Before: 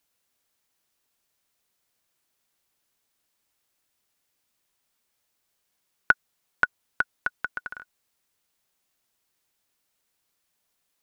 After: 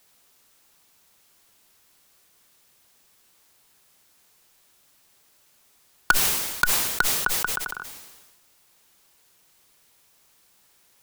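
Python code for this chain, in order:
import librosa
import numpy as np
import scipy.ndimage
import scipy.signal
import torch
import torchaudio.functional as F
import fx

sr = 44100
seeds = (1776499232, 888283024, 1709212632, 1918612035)

p1 = fx.cheby_harmonics(x, sr, harmonics=(6,), levels_db=(-39,), full_scale_db=-2.0)
p2 = fx.fixed_phaser(p1, sr, hz=390.0, stages=8)
p3 = (np.mod(10.0 ** (16.0 / 20.0) * p2 + 1.0, 2.0) - 1.0) / 10.0 ** (16.0 / 20.0)
p4 = p2 + (p3 * librosa.db_to_amplitude(-3.5))
p5 = fx.dmg_noise_colour(p4, sr, seeds[0], colour='white', level_db=-67.0)
p6 = fx.sustainer(p5, sr, db_per_s=42.0)
y = p6 * librosa.db_to_amplitude(5.0)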